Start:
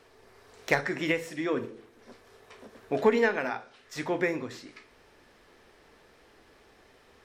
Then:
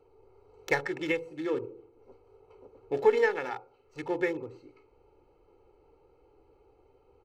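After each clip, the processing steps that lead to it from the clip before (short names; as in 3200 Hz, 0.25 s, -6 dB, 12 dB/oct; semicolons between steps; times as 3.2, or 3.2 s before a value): Wiener smoothing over 25 samples; comb 2.3 ms, depth 80%; gain -4 dB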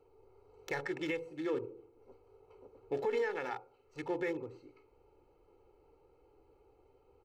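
limiter -22 dBFS, peak gain reduction 10.5 dB; gain -3.5 dB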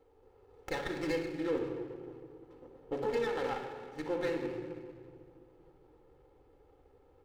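shoebox room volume 3400 m³, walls mixed, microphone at 2.1 m; running maximum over 9 samples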